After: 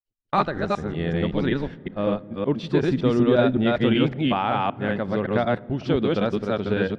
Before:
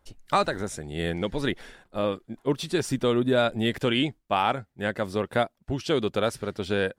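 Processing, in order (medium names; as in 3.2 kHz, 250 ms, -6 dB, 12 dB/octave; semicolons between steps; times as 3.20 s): chunks repeated in reverse 188 ms, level 0 dB; dynamic bell 190 Hz, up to +5 dB, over -37 dBFS, Q 1; gate -34 dBFS, range -42 dB; distance through air 220 m; on a send: reverberation RT60 3.5 s, pre-delay 6 ms, DRR 22 dB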